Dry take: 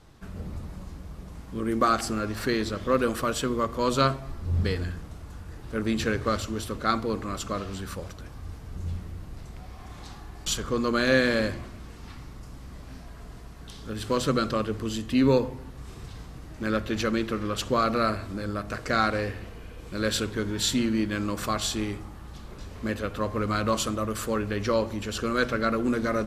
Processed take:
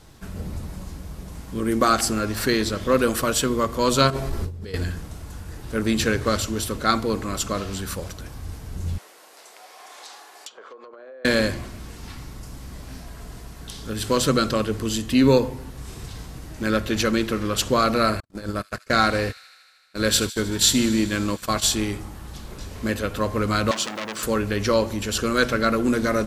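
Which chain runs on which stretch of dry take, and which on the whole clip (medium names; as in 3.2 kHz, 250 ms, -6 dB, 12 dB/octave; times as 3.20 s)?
4.10–4.74 s: peaking EQ 420 Hz +8 dB 0.5 oct + compressor with a negative ratio -34 dBFS
8.98–11.25 s: high-pass 480 Hz 24 dB/octave + low-pass that closes with the level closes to 650 Hz, closed at -25 dBFS + compression 16:1, threshold -43 dBFS
18.20–21.66 s: gate -32 dBFS, range -57 dB + feedback echo behind a high-pass 77 ms, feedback 77%, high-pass 2.7 kHz, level -15 dB
23.71–24.23 s: three-band isolator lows -24 dB, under 160 Hz, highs -23 dB, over 7.1 kHz + word length cut 10-bit, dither none + transformer saturation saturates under 4 kHz
whole clip: treble shelf 5.2 kHz +9 dB; band-stop 1.2 kHz, Q 18; trim +4.5 dB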